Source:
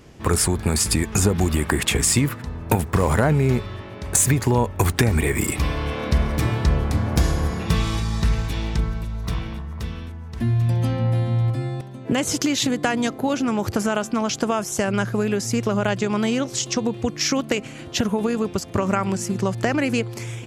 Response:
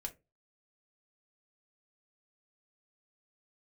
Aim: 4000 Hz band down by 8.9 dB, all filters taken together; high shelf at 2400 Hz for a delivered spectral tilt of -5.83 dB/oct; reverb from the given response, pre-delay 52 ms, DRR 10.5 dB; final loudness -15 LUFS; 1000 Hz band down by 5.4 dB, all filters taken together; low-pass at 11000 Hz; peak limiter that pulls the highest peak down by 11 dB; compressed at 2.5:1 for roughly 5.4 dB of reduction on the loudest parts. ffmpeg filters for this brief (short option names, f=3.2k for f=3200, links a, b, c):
-filter_complex "[0:a]lowpass=11k,equalizer=f=1k:t=o:g=-6,highshelf=f=2.4k:g=-4,equalizer=f=4k:t=o:g=-8,acompressor=threshold=-22dB:ratio=2.5,alimiter=limit=-21.5dB:level=0:latency=1,asplit=2[a][b];[1:a]atrim=start_sample=2205,adelay=52[c];[b][c]afir=irnorm=-1:irlink=0,volume=-8dB[d];[a][d]amix=inputs=2:normalize=0,volume=15dB"